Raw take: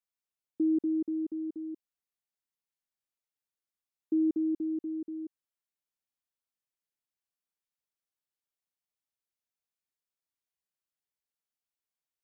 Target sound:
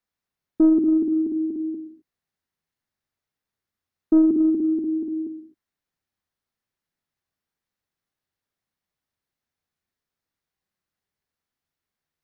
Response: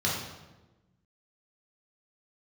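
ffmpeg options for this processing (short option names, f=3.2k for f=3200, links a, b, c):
-filter_complex "[0:a]bass=f=250:g=6,treble=f=4k:g=-8,asplit=2[a][b];[1:a]atrim=start_sample=2205,afade=t=out:st=0.32:d=0.01,atrim=end_sample=14553[c];[b][c]afir=irnorm=-1:irlink=0,volume=-16dB[d];[a][d]amix=inputs=2:normalize=0,aeval=exprs='0.133*(cos(1*acos(clip(val(0)/0.133,-1,1)))-cos(1*PI/2))+0.0168*(cos(2*acos(clip(val(0)/0.133,-1,1)))-cos(2*PI/2))+0.00668*(cos(3*acos(clip(val(0)/0.133,-1,1)))-cos(3*PI/2))+0.00473*(cos(4*acos(clip(val(0)/0.133,-1,1)))-cos(4*PI/2))+0.00119*(cos(5*acos(clip(val(0)/0.133,-1,1)))-cos(5*PI/2))':c=same,acontrast=70,volume=2dB"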